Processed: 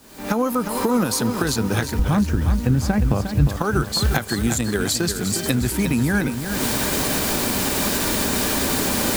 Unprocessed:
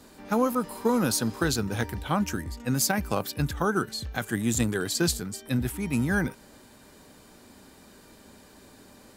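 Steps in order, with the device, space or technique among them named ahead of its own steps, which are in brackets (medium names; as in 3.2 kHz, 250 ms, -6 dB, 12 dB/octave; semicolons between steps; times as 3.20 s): 1.99–3.47 s: RIAA curve playback; cheap recorder with automatic gain (white noise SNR 29 dB; recorder AGC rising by 58 dB/s); bit-crushed delay 356 ms, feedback 55%, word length 6-bit, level -7.5 dB; trim -1 dB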